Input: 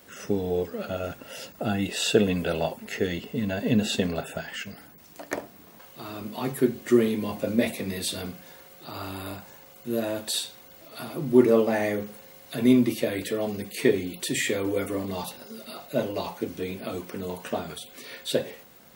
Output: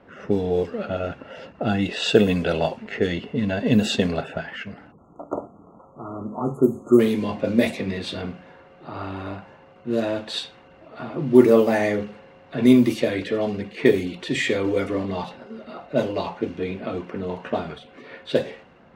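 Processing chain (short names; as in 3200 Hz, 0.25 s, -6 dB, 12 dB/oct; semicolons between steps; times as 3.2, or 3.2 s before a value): median filter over 3 samples; spectral delete 4.92–7, 1400–6300 Hz; low-pass opened by the level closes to 1400 Hz, open at -18 dBFS; gain +4.5 dB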